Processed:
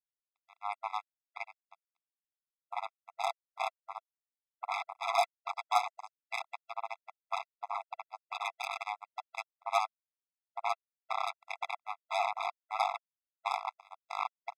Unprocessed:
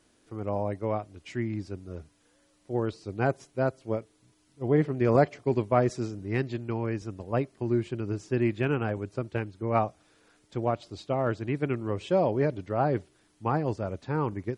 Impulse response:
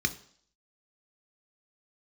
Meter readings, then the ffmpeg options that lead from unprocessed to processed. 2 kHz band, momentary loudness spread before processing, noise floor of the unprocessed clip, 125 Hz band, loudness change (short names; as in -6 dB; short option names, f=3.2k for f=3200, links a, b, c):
-2.0 dB, 10 LU, -66 dBFS, under -40 dB, -8.0 dB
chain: -af "tremolo=f=100:d=0.788,acrusher=bits=3:mix=0:aa=0.5,afftfilt=real='re*eq(mod(floor(b*sr/1024/670),2),1)':imag='im*eq(mod(floor(b*sr/1024/670),2),1)':win_size=1024:overlap=0.75,volume=3dB"